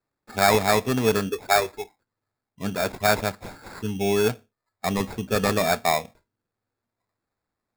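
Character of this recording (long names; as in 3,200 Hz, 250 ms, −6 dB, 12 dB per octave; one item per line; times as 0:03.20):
aliases and images of a low sample rate 3,000 Hz, jitter 0%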